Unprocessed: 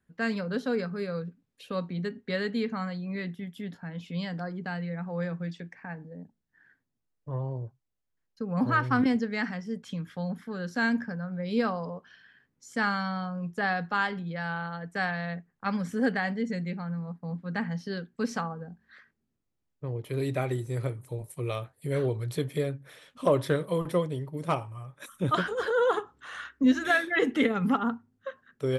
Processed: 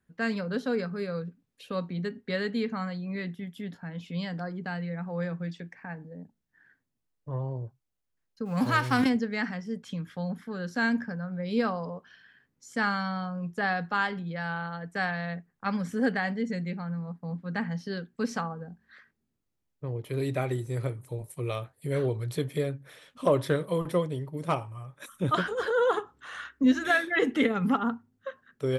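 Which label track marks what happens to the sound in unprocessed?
8.450000	9.080000	spectral whitening exponent 0.6

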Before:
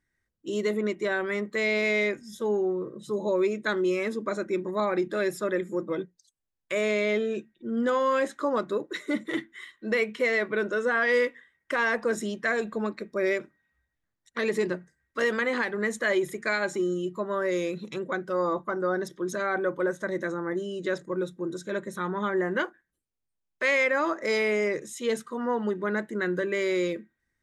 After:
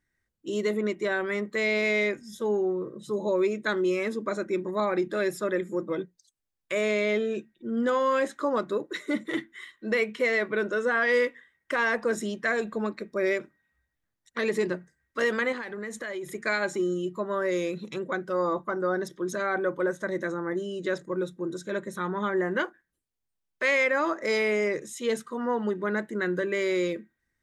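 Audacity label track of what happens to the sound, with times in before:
15.520000	16.350000	compressor 4:1, threshold -33 dBFS

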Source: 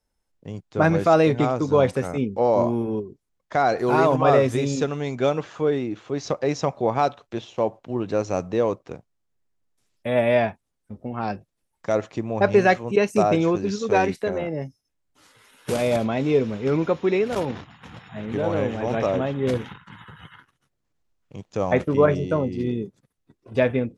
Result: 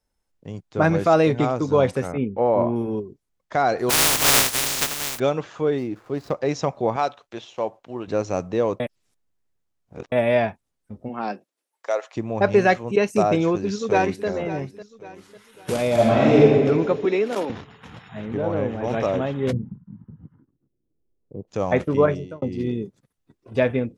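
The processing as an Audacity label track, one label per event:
2.120000	2.760000	LPF 2900 Hz 24 dB/oct
3.890000	5.180000	spectral contrast lowered exponent 0.1
5.780000	6.320000	median filter over 15 samples
6.960000	8.080000	low shelf 340 Hz -10.5 dB
8.800000	10.120000	reverse
11.080000	12.150000	HPF 150 Hz -> 650 Hz 24 dB/oct
13.350000	14.270000	echo throw 0.55 s, feedback 40%, level -14 dB
15.930000	16.410000	reverb throw, RT60 1.7 s, DRR -7 dB
17.050000	17.500000	steep high-pass 200 Hz
18.280000	18.840000	high shelf 2600 Hz -11.5 dB
19.510000	21.470000	synth low-pass 180 Hz -> 480 Hz, resonance Q 2.6
22.010000	22.420000	fade out

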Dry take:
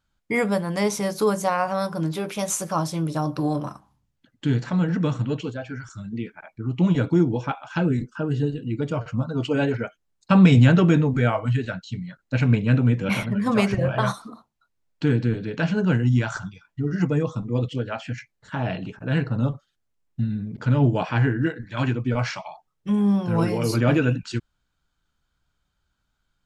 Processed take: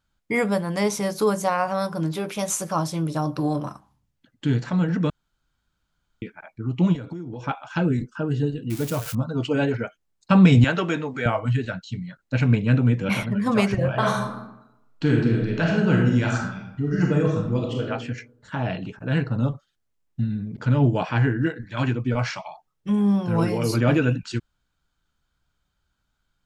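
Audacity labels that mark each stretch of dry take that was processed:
5.100000	6.220000	room tone
6.940000	7.460000	compressor 20:1, threshold -29 dBFS
8.700000	9.150000	switching spikes of -22 dBFS
10.640000	11.260000	weighting filter A
13.950000	17.840000	reverb throw, RT60 0.87 s, DRR 0 dB

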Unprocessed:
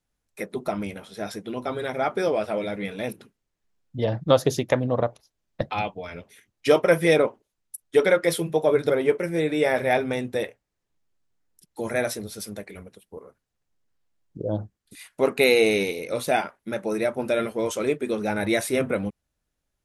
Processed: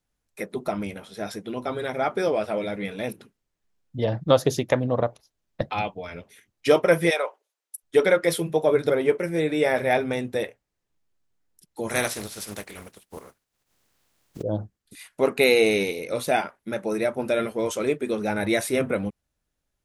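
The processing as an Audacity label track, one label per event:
7.090000	7.820000	HPF 700 Hz -> 340 Hz 24 dB/oct
11.890000	14.410000	spectral contrast lowered exponent 0.54

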